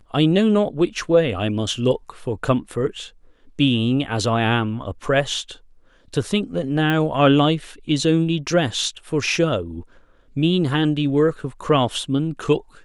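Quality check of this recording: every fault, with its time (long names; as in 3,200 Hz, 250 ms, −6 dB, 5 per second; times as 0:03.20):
0:06.90: click −11 dBFS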